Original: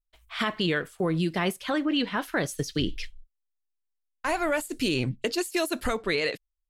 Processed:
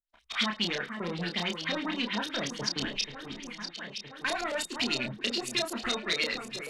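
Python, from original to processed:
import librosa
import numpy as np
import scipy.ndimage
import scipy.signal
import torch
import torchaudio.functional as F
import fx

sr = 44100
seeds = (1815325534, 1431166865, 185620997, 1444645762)

y = fx.leveller(x, sr, passes=2)
y = fx.high_shelf(y, sr, hz=7000.0, db=-8.5, at=(0.45, 2.83))
y = fx.leveller(y, sr, passes=1)
y = fx.echo_alternate(y, sr, ms=483, hz=2100.0, feedback_pct=68, wet_db=-9)
y = fx.filter_lfo_lowpass(y, sr, shape='saw_up', hz=9.3, low_hz=430.0, high_hz=6100.0, q=3.0)
y = F.preemphasis(torch.from_numpy(y), 0.9).numpy()
y = fx.doubler(y, sr, ms=29.0, db=-4.0)
y = fx.small_body(y, sr, hz=(220.0, 3700.0), ring_ms=100, db=13)
y = fx.band_squash(y, sr, depth_pct=40)
y = y * librosa.db_to_amplitude(-2.0)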